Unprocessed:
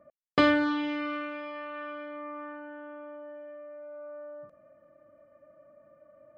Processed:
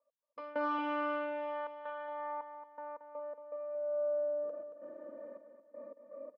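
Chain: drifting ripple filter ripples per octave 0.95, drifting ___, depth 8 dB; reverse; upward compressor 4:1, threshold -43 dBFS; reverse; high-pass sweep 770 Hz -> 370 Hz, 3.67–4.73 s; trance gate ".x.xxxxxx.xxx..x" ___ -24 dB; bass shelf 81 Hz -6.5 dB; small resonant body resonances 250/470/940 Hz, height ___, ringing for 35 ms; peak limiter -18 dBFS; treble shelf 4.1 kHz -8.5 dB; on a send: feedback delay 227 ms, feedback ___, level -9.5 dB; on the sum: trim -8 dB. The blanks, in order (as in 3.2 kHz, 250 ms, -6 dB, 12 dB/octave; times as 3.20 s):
+0.32 Hz, 81 bpm, 15 dB, 33%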